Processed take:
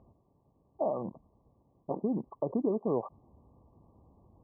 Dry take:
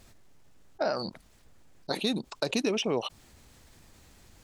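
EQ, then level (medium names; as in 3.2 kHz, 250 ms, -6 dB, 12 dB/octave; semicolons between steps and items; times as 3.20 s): high-pass 64 Hz; brick-wall FIR low-pass 1.2 kHz; distance through air 500 m; 0.0 dB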